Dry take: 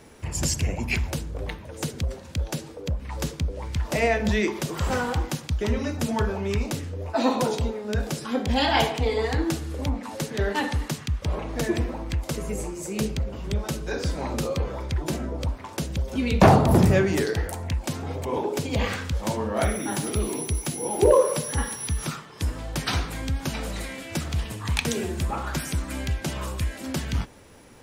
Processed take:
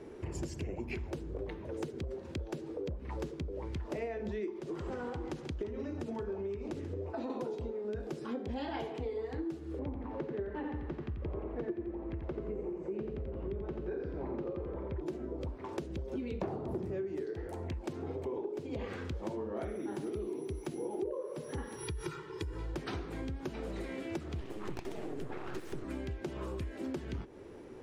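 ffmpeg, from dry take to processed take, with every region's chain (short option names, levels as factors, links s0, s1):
-filter_complex "[0:a]asettb=1/sr,asplit=3[s0][s1][s2];[s0]atrim=end=4.594[s3];[s1]atrim=start=4.59:end=7.3,asetpts=PTS-STARTPTS,afade=t=in:d=0.004:c=qsin,afade=t=out:st=2.706:d=0.004:c=qsin,lowpass=11000,acompressor=threshold=0.0501:ratio=6:attack=3.2:release=140:knee=1:detection=peak,aecho=1:1:137:0.211,atrim=end_sample=119511[s4];[s2]atrim=start=7.296[s5];[s3][s4]acrossfade=d=0.004:c1=hsin:c2=qsin[s6];[s6][s5]acrossfade=d=0.004:c1=qsin:c2=hsin,asettb=1/sr,asplit=3[s7][s8][s9];[s7]atrim=end=9.794[s10];[s8]atrim=start=9.79:end=15.01,asetpts=PTS-STARTPTS,afade=t=in:d=0.004:c=qsin,afade=t=out:st=5.216:d=0.004:c=qsin,lowpass=2200,aecho=1:1:87|174|261|348|435:0.562|0.236|0.0992|0.0417|0.0175,atrim=end_sample=230202[s11];[s9]atrim=start=15.006[s12];[s10][s11]acrossfade=d=0.004:c1=hsin:c2=qsin[s13];[s13][s12]acrossfade=d=0.004:c1=qsin:c2=hsin,asettb=1/sr,asplit=3[s14][s15][s16];[s14]atrim=end=21.784[s17];[s15]atrim=start=21.78:end=22.75,asetpts=PTS-STARTPTS,afade=t=in:d=0.004:c=qsin,afade=t=out:st=0.966:d=0.004:c=qsin,equalizer=f=590:t=o:w=0.56:g=-11.5,aecho=1:1:2.1:0.88,atrim=end_sample=42777,acompressor=threshold=0.0708:ratio=6:attack=3.2:release=140:knee=1:detection=peak[s18];[s16]atrim=start=22.746[s19];[s17][s18]acrossfade=d=0.004:c1=hsin:c2=qsin[s20];[s20][s19]acrossfade=d=0.004:c1=qsin:c2=hsin,asettb=1/sr,asplit=3[s21][s22][s23];[s21]atrim=end=24.404[s24];[s22]atrim=start=24.4:end=25.84,asetpts=PTS-STARTPTS,afade=t=in:d=0.004:c=qsin,afade=t=out:st=1.436:d=0.004:c=qsin,bandreject=f=60:t=h:w=6,bandreject=f=120:t=h:w=6,bandreject=f=180:t=h:w=6,bandreject=f=240:t=h:w=6,bandreject=f=300:t=h:w=6,bandreject=f=360:t=h:w=6,bandreject=f=420:t=h:w=6,bandreject=f=480:t=h:w=6,bandreject=f=540:t=h:w=6,bandreject=f=600:t=h:w=6,aeval=exprs='abs(val(0))':c=same[s25];[s23]atrim=start=25.836[s26];[s24][s25]acrossfade=d=0.004:c1=hsin:c2=qsin[s27];[s27][s26]acrossfade=d=0.004:c1=qsin:c2=hsin,lowpass=f=2000:p=1,equalizer=f=370:w=2.2:g=14.5,acompressor=threshold=0.0282:ratio=8,volume=0.596"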